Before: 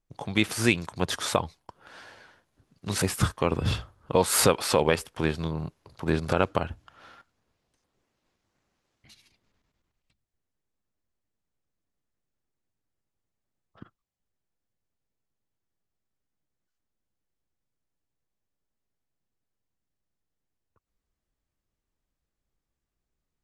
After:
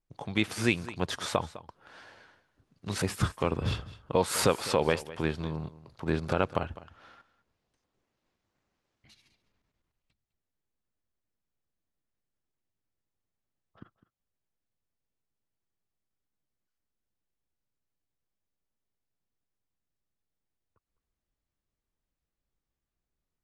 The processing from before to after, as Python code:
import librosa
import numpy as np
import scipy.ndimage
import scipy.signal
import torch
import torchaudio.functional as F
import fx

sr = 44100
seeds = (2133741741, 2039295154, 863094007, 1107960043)

p1 = fx.high_shelf(x, sr, hz=8800.0, db=-9.0)
p2 = p1 + fx.echo_single(p1, sr, ms=205, db=-17.0, dry=0)
y = F.gain(torch.from_numpy(p2), -3.5).numpy()